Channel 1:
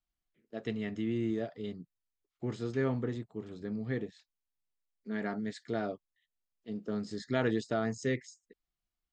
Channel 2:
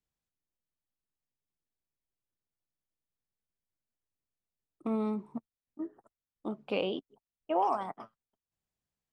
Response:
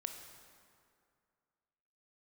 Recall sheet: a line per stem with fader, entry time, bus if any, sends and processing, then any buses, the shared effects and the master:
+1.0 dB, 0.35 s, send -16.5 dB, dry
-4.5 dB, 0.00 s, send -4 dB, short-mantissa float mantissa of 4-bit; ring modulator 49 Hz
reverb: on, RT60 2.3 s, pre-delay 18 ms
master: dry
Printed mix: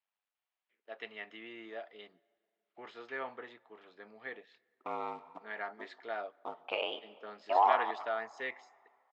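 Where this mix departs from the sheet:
stem 2 -4.5 dB -> +4.0 dB; master: extra Chebyshev band-pass 770–2900 Hz, order 2

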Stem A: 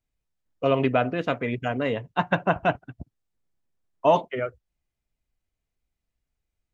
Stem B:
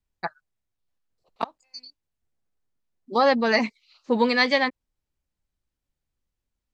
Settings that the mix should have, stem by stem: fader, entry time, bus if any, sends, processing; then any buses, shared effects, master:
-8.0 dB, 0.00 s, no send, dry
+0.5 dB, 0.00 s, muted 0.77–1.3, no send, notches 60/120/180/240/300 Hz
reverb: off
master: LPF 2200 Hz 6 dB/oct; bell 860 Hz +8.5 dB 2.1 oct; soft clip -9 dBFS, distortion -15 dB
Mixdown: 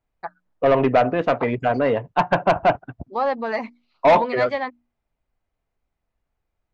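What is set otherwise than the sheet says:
stem A -8.0 dB -> +3.0 dB; stem B +0.5 dB -> -8.5 dB

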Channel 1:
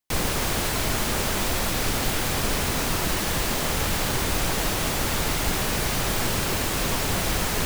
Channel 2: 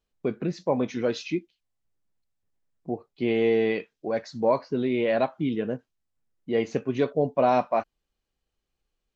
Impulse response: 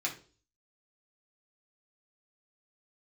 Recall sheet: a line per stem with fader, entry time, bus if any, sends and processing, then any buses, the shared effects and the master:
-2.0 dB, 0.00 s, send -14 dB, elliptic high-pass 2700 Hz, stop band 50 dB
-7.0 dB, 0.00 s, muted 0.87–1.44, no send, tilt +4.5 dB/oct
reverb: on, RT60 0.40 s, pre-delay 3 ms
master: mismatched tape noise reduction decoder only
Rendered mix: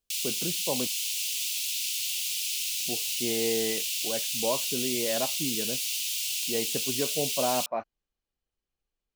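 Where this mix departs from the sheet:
stem 2: missing tilt +4.5 dB/oct; master: missing mismatched tape noise reduction decoder only

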